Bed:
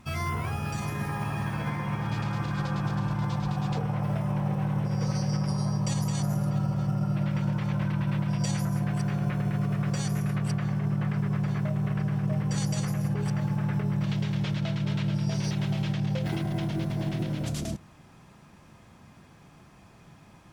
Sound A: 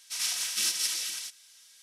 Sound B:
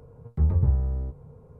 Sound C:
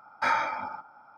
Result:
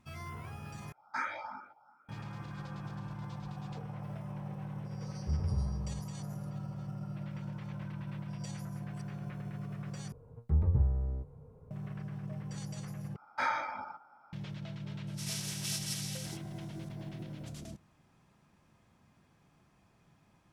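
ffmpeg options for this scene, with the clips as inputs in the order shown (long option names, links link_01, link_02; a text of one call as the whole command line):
ffmpeg -i bed.wav -i cue0.wav -i cue1.wav -i cue2.wav -filter_complex "[3:a]asplit=2[link_01][link_02];[2:a]asplit=2[link_03][link_04];[0:a]volume=-13.5dB[link_05];[link_01]asplit=2[link_06][link_07];[link_07]afreqshift=2.6[link_08];[link_06][link_08]amix=inputs=2:normalize=1[link_09];[link_05]asplit=4[link_10][link_11][link_12][link_13];[link_10]atrim=end=0.924[link_14];[link_09]atrim=end=1.17,asetpts=PTS-STARTPTS,volume=-8dB[link_15];[link_11]atrim=start=2.086:end=10.124[link_16];[link_04]atrim=end=1.59,asetpts=PTS-STARTPTS,volume=-6dB[link_17];[link_12]atrim=start=11.706:end=13.164[link_18];[link_02]atrim=end=1.17,asetpts=PTS-STARTPTS,volume=-6.5dB[link_19];[link_13]atrim=start=14.326[link_20];[link_03]atrim=end=1.59,asetpts=PTS-STARTPTS,volume=-11.5dB,afade=type=in:duration=0.004:curve=hsin,afade=type=out:start_time=1.586:duration=0.004:curve=hsin,adelay=215649S[link_21];[1:a]atrim=end=1.82,asetpts=PTS-STARTPTS,volume=-9.5dB,afade=type=in:duration=0.004:curve=hsin,afade=type=out:start_time=1.816:duration=0.004:curve=hsin,adelay=15070[link_22];[link_14][link_15]acrossfade=duration=0.004:curve1=hsin:curve2=hsin[link_23];[link_23][link_16]acrossfade=duration=0.004:curve1=hsin:curve2=hsin[link_24];[link_24][link_17]acrossfade=duration=0.004:curve1=hsin:curve2=hsin[link_25];[link_25][link_18]acrossfade=duration=0.004:curve1=hsin:curve2=hsin[link_26];[link_26][link_19]acrossfade=duration=0.004:curve1=hsin:curve2=hsin[link_27];[link_27][link_20]acrossfade=duration=0.004:curve1=hsin:curve2=hsin[link_28];[link_28][link_21][link_22]amix=inputs=3:normalize=0" out.wav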